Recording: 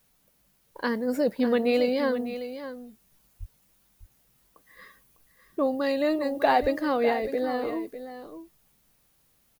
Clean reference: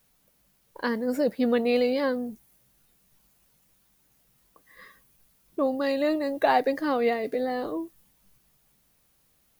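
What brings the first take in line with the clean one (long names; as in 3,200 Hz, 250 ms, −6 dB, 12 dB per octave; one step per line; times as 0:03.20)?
high-pass at the plosives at 0:03.39/0:06.61
echo removal 601 ms −11.5 dB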